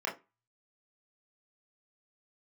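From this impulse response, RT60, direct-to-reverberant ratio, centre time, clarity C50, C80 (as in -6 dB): 0.25 s, -4.5 dB, 24 ms, 12.0 dB, 20.0 dB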